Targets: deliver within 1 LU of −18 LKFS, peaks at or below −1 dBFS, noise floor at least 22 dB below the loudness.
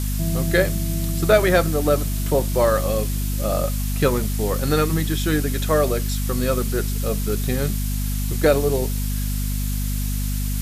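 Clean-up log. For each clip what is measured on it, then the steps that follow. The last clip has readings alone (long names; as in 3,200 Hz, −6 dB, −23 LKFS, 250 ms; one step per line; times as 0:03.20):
mains hum 50 Hz; hum harmonics up to 250 Hz; level of the hum −21 dBFS; background noise floor −23 dBFS; target noise floor −44 dBFS; integrated loudness −22.0 LKFS; sample peak −2.5 dBFS; target loudness −18.0 LKFS
→ mains-hum notches 50/100/150/200/250 Hz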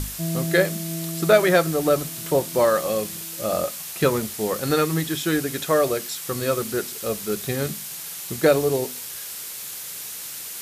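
mains hum none found; background noise floor −35 dBFS; target noise floor −46 dBFS
→ noise reduction from a noise print 11 dB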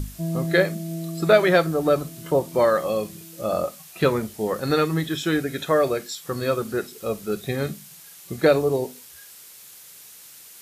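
background noise floor −46 dBFS; integrated loudness −23.0 LKFS; sample peak −3.0 dBFS; target loudness −18.0 LKFS
→ level +5 dB
brickwall limiter −1 dBFS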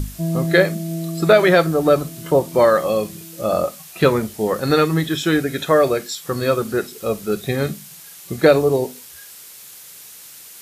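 integrated loudness −18.5 LKFS; sample peak −1.0 dBFS; background noise floor −41 dBFS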